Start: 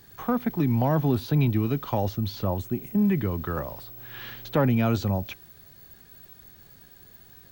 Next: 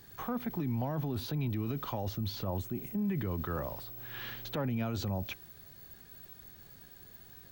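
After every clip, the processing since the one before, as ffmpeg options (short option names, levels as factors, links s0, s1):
-af "alimiter=limit=0.0631:level=0:latency=1:release=43,volume=0.75"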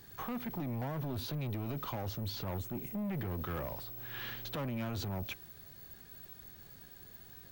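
-af "asoftclip=type=hard:threshold=0.0188"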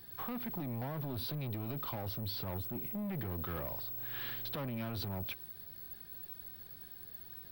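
-af "aexciter=amount=1.1:drive=2:freq=3700,volume=0.794"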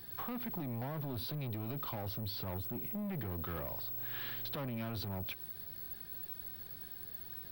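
-af "acompressor=threshold=0.00891:ratio=6,volume=1.41"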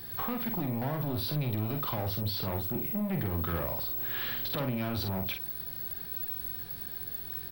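-filter_complex "[0:a]asplit=2[s0][s1];[s1]adelay=47,volume=0.501[s2];[s0][s2]amix=inputs=2:normalize=0,volume=2.24"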